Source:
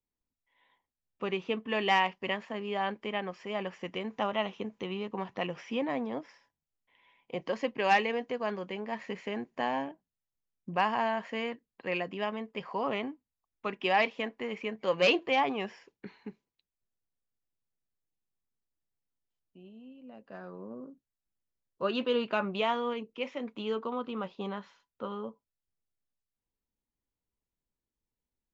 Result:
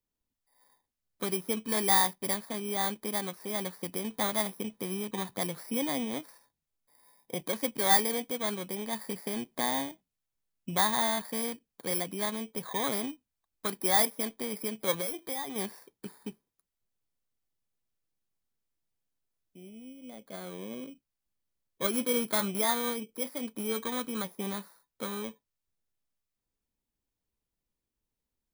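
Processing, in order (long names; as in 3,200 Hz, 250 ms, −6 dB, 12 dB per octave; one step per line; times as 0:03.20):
samples in bit-reversed order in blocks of 16 samples
dynamic equaliser 540 Hz, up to −5 dB, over −42 dBFS, Q 0.92
0:14.97–0:15.56: downward compressor 6 to 1, threshold −36 dBFS, peak gain reduction 13.5 dB
level +3 dB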